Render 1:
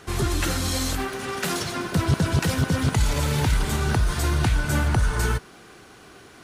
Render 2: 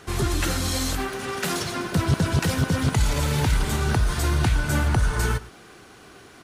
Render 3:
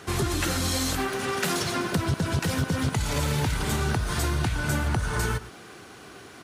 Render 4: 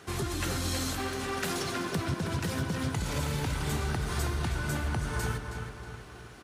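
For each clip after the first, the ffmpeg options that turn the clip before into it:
-af "aecho=1:1:111:0.106"
-af "highpass=67,acompressor=threshold=0.0631:ratio=6,volume=1.26"
-filter_complex "[0:a]asplit=2[s0][s1];[s1]adelay=319,lowpass=f=4600:p=1,volume=0.473,asplit=2[s2][s3];[s3]adelay=319,lowpass=f=4600:p=1,volume=0.53,asplit=2[s4][s5];[s5]adelay=319,lowpass=f=4600:p=1,volume=0.53,asplit=2[s6][s7];[s7]adelay=319,lowpass=f=4600:p=1,volume=0.53,asplit=2[s8][s9];[s9]adelay=319,lowpass=f=4600:p=1,volume=0.53,asplit=2[s10][s11];[s11]adelay=319,lowpass=f=4600:p=1,volume=0.53,asplit=2[s12][s13];[s13]adelay=319,lowpass=f=4600:p=1,volume=0.53[s14];[s0][s2][s4][s6][s8][s10][s12][s14]amix=inputs=8:normalize=0,volume=0.473"

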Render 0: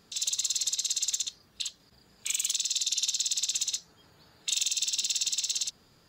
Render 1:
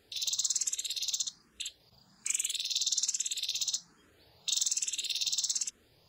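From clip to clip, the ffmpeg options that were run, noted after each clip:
-filter_complex "[0:a]asplit=2[s0][s1];[s1]afreqshift=1.2[s2];[s0][s2]amix=inputs=2:normalize=1"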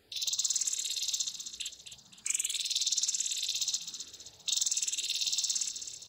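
-af "aecho=1:1:261|522|783|1044|1305:0.335|0.144|0.0619|0.0266|0.0115"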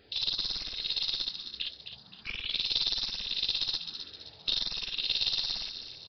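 -af "aeval=exprs='(tanh(12.6*val(0)+0.25)-tanh(0.25))/12.6':c=same,aresample=11025,aresample=44100,volume=2"

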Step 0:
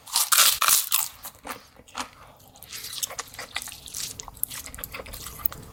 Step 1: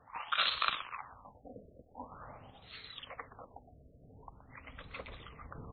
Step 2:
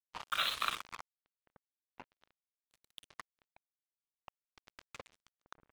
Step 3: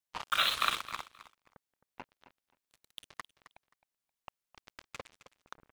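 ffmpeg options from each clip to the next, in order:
-filter_complex "[0:a]areverse,acompressor=mode=upward:threshold=0.0282:ratio=2.5,areverse,asplit=6[s0][s1][s2][s3][s4][s5];[s1]adelay=122,afreqshift=-73,volume=0.251[s6];[s2]adelay=244,afreqshift=-146,volume=0.116[s7];[s3]adelay=366,afreqshift=-219,volume=0.0531[s8];[s4]adelay=488,afreqshift=-292,volume=0.0245[s9];[s5]adelay=610,afreqshift=-365,volume=0.0112[s10];[s0][s6][s7][s8][s9][s10]amix=inputs=6:normalize=0,afftfilt=real='re*lt(b*sr/1024,680*pow(4400/680,0.5+0.5*sin(2*PI*0.45*pts/sr)))':imag='im*lt(b*sr/1024,680*pow(4400/680,0.5+0.5*sin(2*PI*0.45*pts/sr)))':win_size=1024:overlap=0.75,volume=0.355"
-af "acrusher=bits=5:mix=0:aa=0.5,volume=0.75"
-af "aecho=1:1:264|528:0.178|0.0338,volume=1.78"

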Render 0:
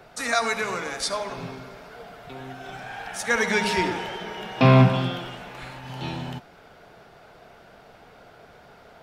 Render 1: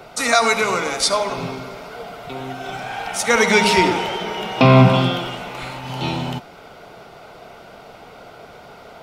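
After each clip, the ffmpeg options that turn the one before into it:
-af "lowshelf=f=140:g=-5,bandreject=f=1700:w=5.5,alimiter=level_in=3.35:limit=0.891:release=50:level=0:latency=1,volume=0.891"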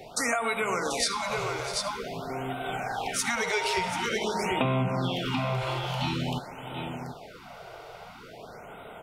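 -af "aecho=1:1:646|735:0.106|0.376,acompressor=threshold=0.1:ratio=8,afftfilt=real='re*(1-between(b*sr/1024,210*pow(5600/210,0.5+0.5*sin(2*PI*0.48*pts/sr))/1.41,210*pow(5600/210,0.5+0.5*sin(2*PI*0.48*pts/sr))*1.41))':imag='im*(1-between(b*sr/1024,210*pow(5600/210,0.5+0.5*sin(2*PI*0.48*pts/sr))/1.41,210*pow(5600/210,0.5+0.5*sin(2*PI*0.48*pts/sr))*1.41))':win_size=1024:overlap=0.75,volume=0.668"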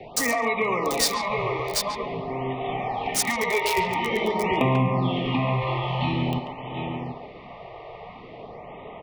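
-filter_complex "[0:a]acrossover=split=370|460|3300[s0][s1][s2][s3];[s2]asuperstop=centerf=1500:order=20:qfactor=2.8[s4];[s3]acrusher=bits=4:mix=0:aa=0.000001[s5];[s0][s1][s4][s5]amix=inputs=4:normalize=0,asplit=2[s6][s7];[s7]adelay=140,highpass=300,lowpass=3400,asoftclip=type=hard:threshold=0.0794,volume=0.501[s8];[s6][s8]amix=inputs=2:normalize=0,volume=1.78"

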